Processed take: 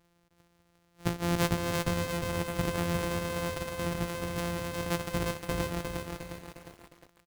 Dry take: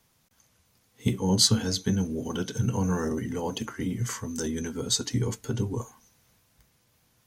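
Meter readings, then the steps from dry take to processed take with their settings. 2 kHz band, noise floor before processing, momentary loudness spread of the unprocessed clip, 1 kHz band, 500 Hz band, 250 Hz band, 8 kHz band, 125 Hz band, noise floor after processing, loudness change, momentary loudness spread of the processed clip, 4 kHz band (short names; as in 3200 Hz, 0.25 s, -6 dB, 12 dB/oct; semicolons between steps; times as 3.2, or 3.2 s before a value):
+5.0 dB, -68 dBFS, 11 LU, +3.5 dB, 0.0 dB, -5.5 dB, -10.5 dB, -5.0 dB, -69 dBFS, -4.5 dB, 12 LU, -9.5 dB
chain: sample sorter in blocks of 256 samples; compressor 1.5:1, threshold -31 dBFS, peak gain reduction 6 dB; feedback echo 0.608 s, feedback 29%, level -20 dB; lo-fi delay 0.356 s, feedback 55%, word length 8-bit, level -3.5 dB; gain -1.5 dB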